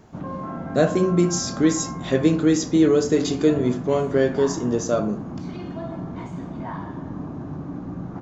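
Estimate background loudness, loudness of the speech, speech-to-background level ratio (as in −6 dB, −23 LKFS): −32.5 LKFS, −21.0 LKFS, 11.5 dB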